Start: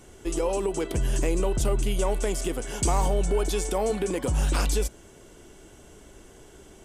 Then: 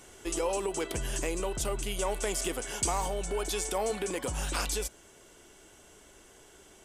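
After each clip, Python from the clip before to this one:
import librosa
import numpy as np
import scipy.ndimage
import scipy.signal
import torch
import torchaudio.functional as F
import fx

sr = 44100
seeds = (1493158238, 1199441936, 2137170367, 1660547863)

y = fx.rider(x, sr, range_db=3, speed_s=0.5)
y = fx.low_shelf(y, sr, hz=470.0, db=-11.0)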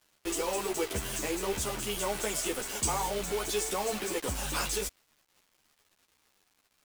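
y = fx.quant_dither(x, sr, seeds[0], bits=6, dither='none')
y = fx.dmg_crackle(y, sr, seeds[1], per_s=250.0, level_db=-50.0)
y = fx.ensemble(y, sr)
y = y * 10.0 ** (3.0 / 20.0)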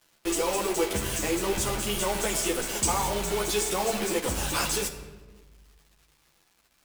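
y = fx.room_shoebox(x, sr, seeds[2], volume_m3=960.0, walls='mixed', distance_m=0.75)
y = y * 10.0 ** (4.0 / 20.0)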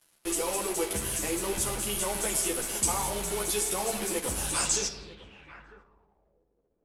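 y = x + 10.0 ** (-19.5 / 20.0) * np.pad(x, (int(948 * sr / 1000.0), 0))[:len(x)]
y = fx.filter_sweep_lowpass(y, sr, from_hz=11000.0, to_hz=460.0, start_s=4.46, end_s=6.46, q=4.2)
y = y * 10.0 ** (-4.5 / 20.0)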